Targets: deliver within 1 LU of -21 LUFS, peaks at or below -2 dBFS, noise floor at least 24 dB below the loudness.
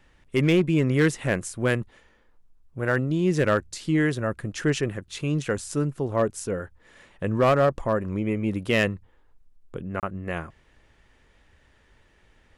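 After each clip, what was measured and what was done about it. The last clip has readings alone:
clipped samples 0.4%; clipping level -13.5 dBFS; dropouts 1; longest dropout 28 ms; loudness -25.0 LUFS; peak level -13.5 dBFS; loudness target -21.0 LUFS
-> clip repair -13.5 dBFS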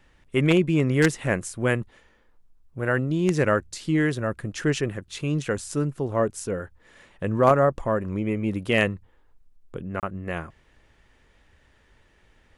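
clipped samples 0.0%; dropouts 1; longest dropout 28 ms
-> interpolate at 10.00 s, 28 ms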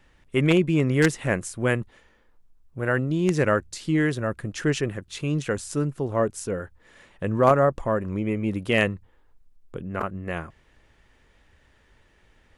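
dropouts 0; loudness -25.0 LUFS; peak level -4.5 dBFS; loudness target -21.0 LUFS
-> trim +4 dB; peak limiter -2 dBFS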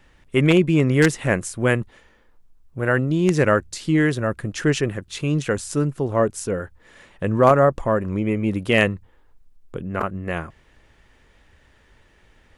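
loudness -21.0 LUFS; peak level -2.0 dBFS; noise floor -57 dBFS

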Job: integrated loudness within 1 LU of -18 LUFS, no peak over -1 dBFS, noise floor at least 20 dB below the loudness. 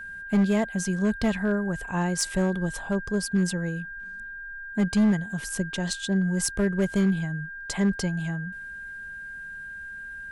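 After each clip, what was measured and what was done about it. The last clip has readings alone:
clipped samples 1.2%; clipping level -16.5 dBFS; steady tone 1.6 kHz; tone level -36 dBFS; loudness -26.5 LUFS; peak level -16.5 dBFS; loudness target -18.0 LUFS
-> clip repair -16.5 dBFS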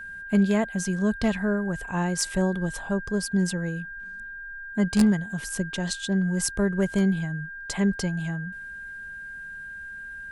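clipped samples 0.0%; steady tone 1.6 kHz; tone level -36 dBFS
-> band-stop 1.6 kHz, Q 30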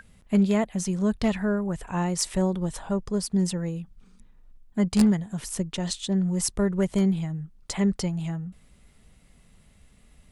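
steady tone not found; loudness -26.5 LUFS; peak level -7.5 dBFS; loudness target -18.0 LUFS
-> trim +8.5 dB; peak limiter -1 dBFS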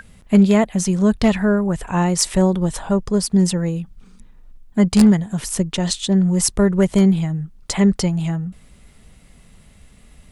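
loudness -18.0 LUFS; peak level -1.0 dBFS; noise floor -49 dBFS

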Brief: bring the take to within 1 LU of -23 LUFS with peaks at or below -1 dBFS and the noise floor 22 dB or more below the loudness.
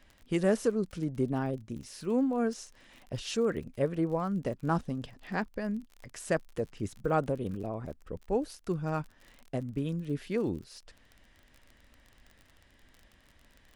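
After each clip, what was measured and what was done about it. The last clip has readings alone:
tick rate 38 per s; loudness -33.0 LUFS; peak level -13.5 dBFS; loudness target -23.0 LUFS
-> de-click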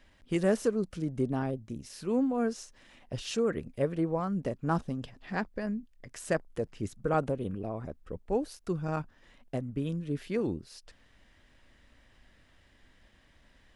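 tick rate 0 per s; loudness -33.0 LUFS; peak level -13.5 dBFS; loudness target -23.0 LUFS
-> trim +10 dB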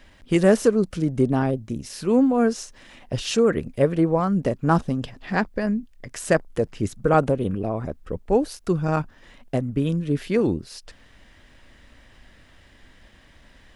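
loudness -23.0 LUFS; peak level -3.5 dBFS; noise floor -53 dBFS

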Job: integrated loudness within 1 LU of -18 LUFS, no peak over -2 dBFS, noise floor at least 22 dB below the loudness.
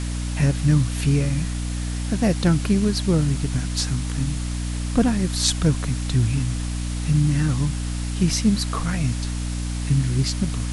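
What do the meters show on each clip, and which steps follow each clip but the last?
hum 60 Hz; highest harmonic 300 Hz; hum level -24 dBFS; noise floor -27 dBFS; noise floor target -45 dBFS; loudness -22.5 LUFS; peak level -5.5 dBFS; loudness target -18.0 LUFS
-> hum notches 60/120/180/240/300 Hz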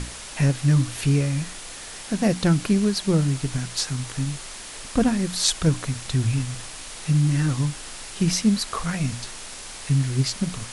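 hum not found; noise floor -38 dBFS; noise floor target -46 dBFS
-> noise reduction 8 dB, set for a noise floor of -38 dBFS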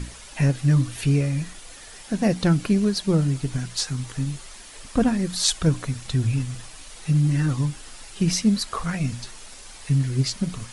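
noise floor -43 dBFS; noise floor target -46 dBFS
-> noise reduction 6 dB, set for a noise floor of -43 dBFS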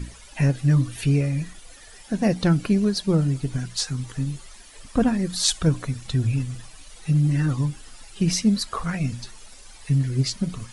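noise floor -46 dBFS; loudness -23.5 LUFS; peak level -5.5 dBFS; loudness target -18.0 LUFS
-> trim +5.5 dB; peak limiter -2 dBFS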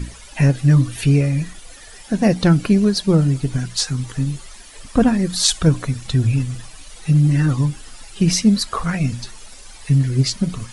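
loudness -18.0 LUFS; peak level -2.0 dBFS; noise floor -41 dBFS

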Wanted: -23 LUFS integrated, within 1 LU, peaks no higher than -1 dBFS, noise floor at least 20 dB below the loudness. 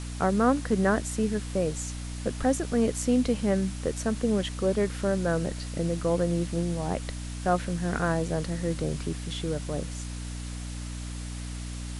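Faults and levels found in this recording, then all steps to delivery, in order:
hum 60 Hz; highest harmonic 300 Hz; hum level -33 dBFS; noise floor -36 dBFS; noise floor target -49 dBFS; loudness -28.5 LUFS; peak level -10.5 dBFS; loudness target -23.0 LUFS
-> de-hum 60 Hz, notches 5; noise reduction 13 dB, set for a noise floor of -36 dBFS; trim +5.5 dB

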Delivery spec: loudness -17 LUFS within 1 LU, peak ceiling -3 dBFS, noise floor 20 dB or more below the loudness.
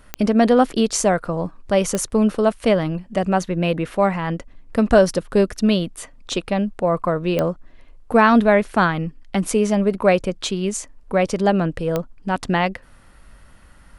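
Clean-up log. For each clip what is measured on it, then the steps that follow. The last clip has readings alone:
clicks found 4; loudness -19.5 LUFS; peak level -1.5 dBFS; loudness target -17.0 LUFS
-> de-click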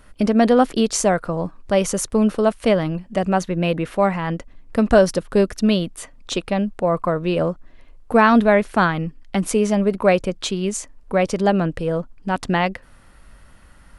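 clicks found 0; loudness -19.5 LUFS; peak level -1.5 dBFS; loudness target -17.0 LUFS
-> trim +2.5 dB; peak limiter -3 dBFS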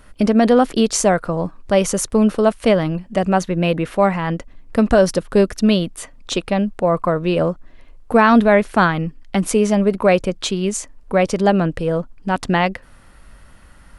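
loudness -17.5 LUFS; peak level -3.0 dBFS; noise floor -45 dBFS

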